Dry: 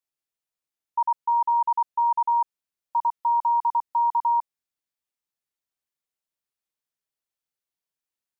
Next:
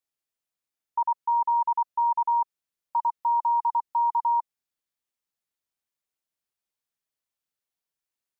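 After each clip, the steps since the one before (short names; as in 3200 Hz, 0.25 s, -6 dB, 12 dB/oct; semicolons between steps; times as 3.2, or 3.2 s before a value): dynamic EQ 1000 Hz, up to -3 dB, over -37 dBFS, Q 7.8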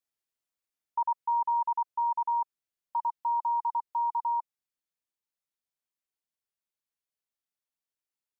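vocal rider 2 s; gain -4 dB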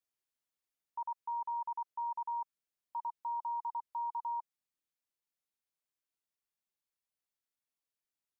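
limiter -30.5 dBFS, peak gain reduction 9 dB; gain -2.5 dB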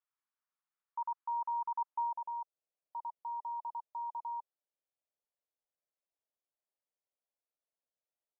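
band-pass sweep 1200 Hz -> 590 Hz, 1.73–2.23; gain +5.5 dB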